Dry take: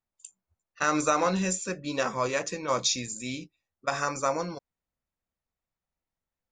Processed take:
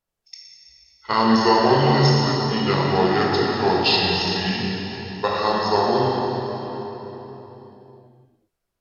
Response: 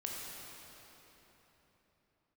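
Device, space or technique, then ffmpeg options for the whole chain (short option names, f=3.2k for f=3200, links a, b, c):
slowed and reverbed: -filter_complex "[0:a]asetrate=32634,aresample=44100[a];[1:a]atrim=start_sample=2205[b];[a][b]afir=irnorm=-1:irlink=0,volume=8.5dB"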